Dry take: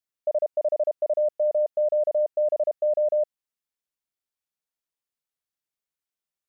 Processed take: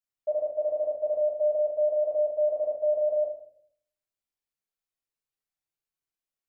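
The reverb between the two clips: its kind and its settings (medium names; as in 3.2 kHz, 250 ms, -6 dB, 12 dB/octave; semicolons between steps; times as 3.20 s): simulated room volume 72 m³, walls mixed, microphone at 1.5 m; trim -10 dB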